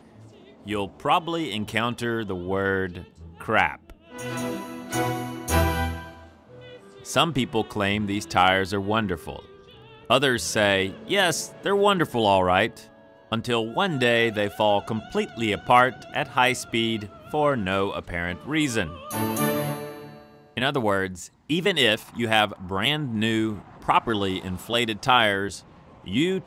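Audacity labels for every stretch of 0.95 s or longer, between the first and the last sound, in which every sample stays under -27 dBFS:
5.980000	7.090000	silence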